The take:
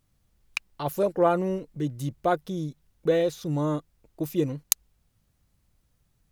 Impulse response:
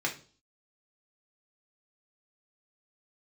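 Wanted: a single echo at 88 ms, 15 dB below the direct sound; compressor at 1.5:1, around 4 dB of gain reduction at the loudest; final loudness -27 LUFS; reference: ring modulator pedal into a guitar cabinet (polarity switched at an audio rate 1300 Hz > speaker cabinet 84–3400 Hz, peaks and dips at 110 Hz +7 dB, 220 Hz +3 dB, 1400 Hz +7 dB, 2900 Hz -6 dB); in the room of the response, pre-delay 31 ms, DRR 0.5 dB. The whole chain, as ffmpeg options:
-filter_complex "[0:a]acompressor=threshold=-29dB:ratio=1.5,aecho=1:1:88:0.178,asplit=2[a][b];[1:a]atrim=start_sample=2205,adelay=31[c];[b][c]afir=irnorm=-1:irlink=0,volume=-7.5dB[d];[a][d]amix=inputs=2:normalize=0,aeval=exprs='val(0)*sgn(sin(2*PI*1300*n/s))':c=same,highpass=84,equalizer=f=110:t=q:w=4:g=7,equalizer=f=220:t=q:w=4:g=3,equalizer=f=1.4k:t=q:w=4:g=7,equalizer=f=2.9k:t=q:w=4:g=-6,lowpass=f=3.4k:w=0.5412,lowpass=f=3.4k:w=1.3066,volume=-1.5dB"

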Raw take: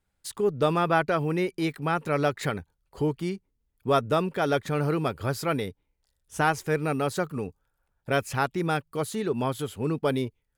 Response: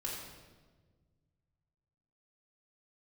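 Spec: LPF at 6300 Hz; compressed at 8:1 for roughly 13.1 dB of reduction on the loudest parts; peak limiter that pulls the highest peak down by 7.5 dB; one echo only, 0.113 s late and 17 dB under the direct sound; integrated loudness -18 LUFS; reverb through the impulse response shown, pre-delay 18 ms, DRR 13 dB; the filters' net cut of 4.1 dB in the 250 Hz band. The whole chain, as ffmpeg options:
-filter_complex "[0:a]lowpass=6.3k,equalizer=f=250:t=o:g=-6.5,acompressor=threshold=-33dB:ratio=8,alimiter=level_in=5dB:limit=-24dB:level=0:latency=1,volume=-5dB,aecho=1:1:113:0.141,asplit=2[a][b];[1:a]atrim=start_sample=2205,adelay=18[c];[b][c]afir=irnorm=-1:irlink=0,volume=-14.5dB[d];[a][d]amix=inputs=2:normalize=0,volume=22dB"

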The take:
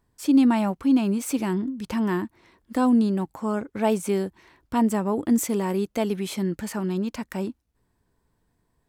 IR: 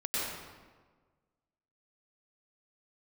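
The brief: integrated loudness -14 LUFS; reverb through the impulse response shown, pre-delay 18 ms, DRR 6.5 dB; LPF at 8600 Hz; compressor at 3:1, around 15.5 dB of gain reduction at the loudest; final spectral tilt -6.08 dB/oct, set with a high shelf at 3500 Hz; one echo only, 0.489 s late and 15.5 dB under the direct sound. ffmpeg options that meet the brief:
-filter_complex "[0:a]lowpass=8.6k,highshelf=f=3.5k:g=-4,acompressor=threshold=-37dB:ratio=3,aecho=1:1:489:0.168,asplit=2[a][b];[1:a]atrim=start_sample=2205,adelay=18[c];[b][c]afir=irnorm=-1:irlink=0,volume=-13.5dB[d];[a][d]amix=inputs=2:normalize=0,volume=22.5dB"

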